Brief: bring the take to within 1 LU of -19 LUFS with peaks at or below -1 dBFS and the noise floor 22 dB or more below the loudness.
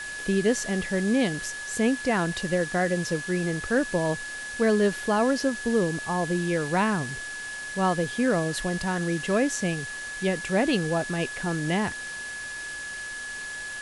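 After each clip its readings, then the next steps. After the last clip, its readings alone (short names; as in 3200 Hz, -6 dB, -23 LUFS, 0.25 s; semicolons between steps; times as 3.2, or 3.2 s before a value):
steady tone 1700 Hz; tone level -34 dBFS; noise floor -36 dBFS; noise floor target -49 dBFS; loudness -26.5 LUFS; peak -11.0 dBFS; loudness target -19.0 LUFS
-> notch 1700 Hz, Q 30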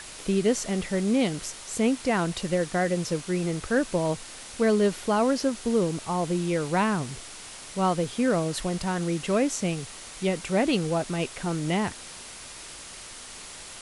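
steady tone none; noise floor -43 dBFS; noise floor target -49 dBFS
-> denoiser 6 dB, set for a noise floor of -43 dBFS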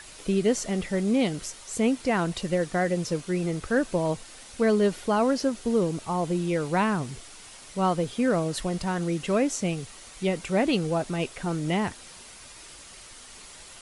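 noise floor -47 dBFS; noise floor target -49 dBFS
-> denoiser 6 dB, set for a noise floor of -47 dBFS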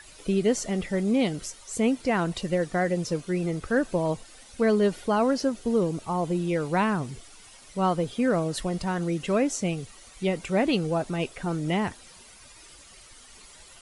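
noise floor -50 dBFS; loudness -27.0 LUFS; peak -11.5 dBFS; loudness target -19.0 LUFS
-> gain +8 dB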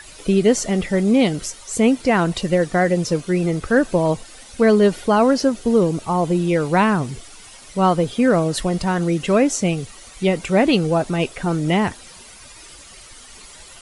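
loudness -19.0 LUFS; peak -3.5 dBFS; noise floor -42 dBFS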